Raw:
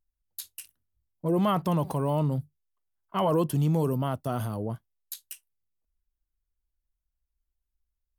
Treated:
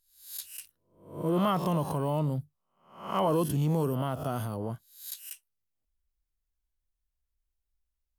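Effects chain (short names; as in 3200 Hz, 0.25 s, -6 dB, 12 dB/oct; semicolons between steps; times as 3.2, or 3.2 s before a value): spectral swells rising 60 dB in 0.53 s; gain -3 dB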